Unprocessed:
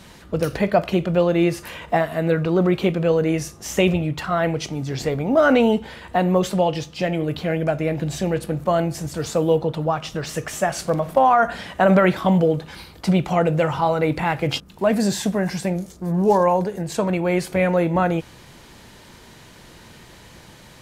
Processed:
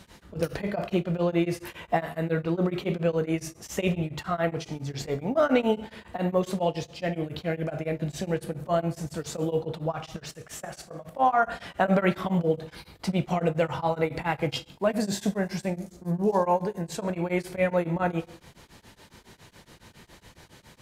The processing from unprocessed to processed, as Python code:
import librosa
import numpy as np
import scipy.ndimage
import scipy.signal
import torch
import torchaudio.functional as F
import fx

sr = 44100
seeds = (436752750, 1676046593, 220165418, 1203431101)

y = fx.level_steps(x, sr, step_db=17, at=(10.16, 11.19))
y = fx.rev_plate(y, sr, seeds[0], rt60_s=0.68, hf_ratio=0.75, predelay_ms=0, drr_db=9.5)
y = y * np.abs(np.cos(np.pi * 7.2 * np.arange(len(y)) / sr))
y = y * 10.0 ** (-4.5 / 20.0)